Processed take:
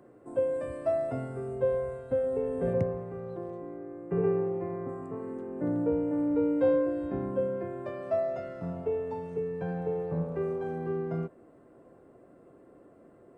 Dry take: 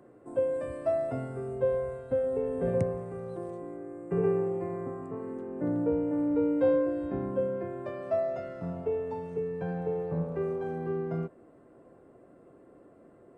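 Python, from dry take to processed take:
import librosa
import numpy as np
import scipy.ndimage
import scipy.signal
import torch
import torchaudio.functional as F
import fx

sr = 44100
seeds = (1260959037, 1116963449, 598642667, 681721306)

y = fx.air_absorb(x, sr, metres=130.0, at=(2.73, 4.89))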